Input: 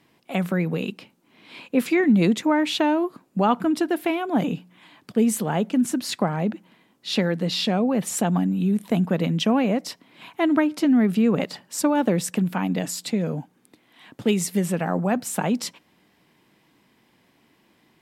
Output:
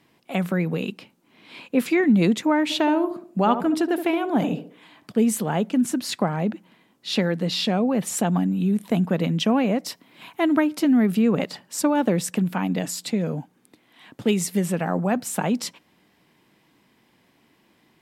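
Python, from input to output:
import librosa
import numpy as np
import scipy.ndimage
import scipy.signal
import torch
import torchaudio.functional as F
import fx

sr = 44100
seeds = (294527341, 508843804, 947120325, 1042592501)

y = fx.echo_banded(x, sr, ms=71, feedback_pct=43, hz=450.0, wet_db=-7.0, at=(2.69, 5.2), fade=0.02)
y = fx.high_shelf(y, sr, hz=12000.0, db=10.5, at=(9.86, 11.19))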